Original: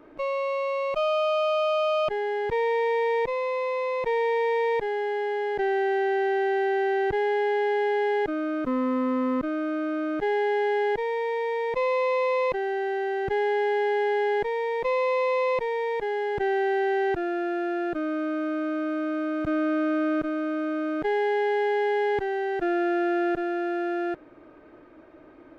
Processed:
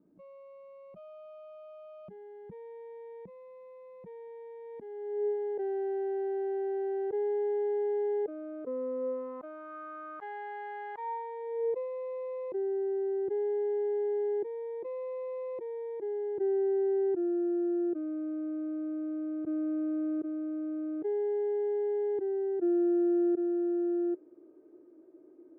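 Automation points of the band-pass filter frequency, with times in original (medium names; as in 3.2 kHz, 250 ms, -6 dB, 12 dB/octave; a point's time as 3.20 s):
band-pass filter, Q 5.4
4.61 s 190 Hz
5.37 s 470 Hz
8.99 s 470 Hz
9.75 s 1.1 kHz
10.96 s 1.1 kHz
11.89 s 360 Hz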